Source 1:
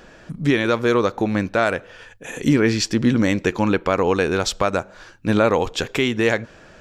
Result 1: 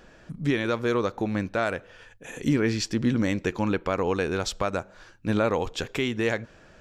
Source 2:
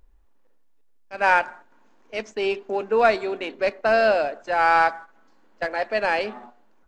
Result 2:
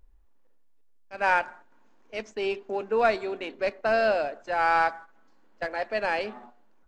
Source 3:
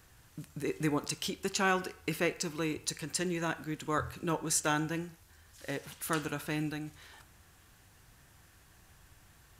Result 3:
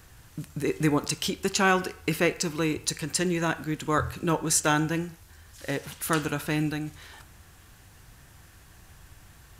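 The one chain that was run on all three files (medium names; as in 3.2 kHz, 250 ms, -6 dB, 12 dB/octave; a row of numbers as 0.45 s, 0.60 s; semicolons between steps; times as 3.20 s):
bass shelf 130 Hz +4 dB; normalise loudness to -27 LUFS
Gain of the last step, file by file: -7.5 dB, -5.0 dB, +6.5 dB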